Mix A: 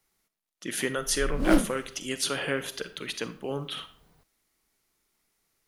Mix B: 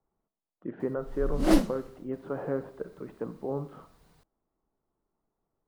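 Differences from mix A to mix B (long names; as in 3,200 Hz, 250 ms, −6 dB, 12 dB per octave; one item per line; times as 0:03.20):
speech: add low-pass filter 1,000 Hz 24 dB per octave
master: add parametric band 6,300 Hz +4.5 dB 2.4 octaves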